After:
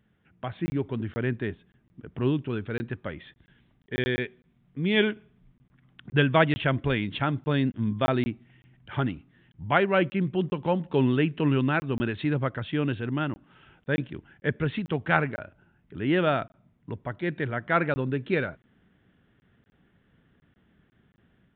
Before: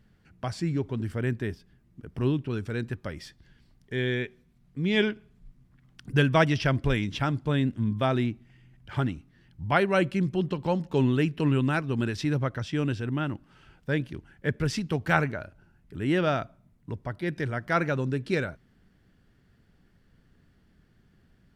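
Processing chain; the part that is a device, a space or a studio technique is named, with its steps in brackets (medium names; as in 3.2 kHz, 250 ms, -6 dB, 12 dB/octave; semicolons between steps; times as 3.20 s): call with lost packets (high-pass 130 Hz 6 dB/octave; resampled via 8 kHz; level rider gain up to 5 dB; lost packets of 20 ms random); trim -3 dB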